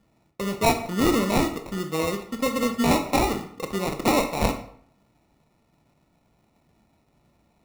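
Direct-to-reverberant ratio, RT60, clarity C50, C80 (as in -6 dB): 6.0 dB, 0.60 s, 10.0 dB, 13.5 dB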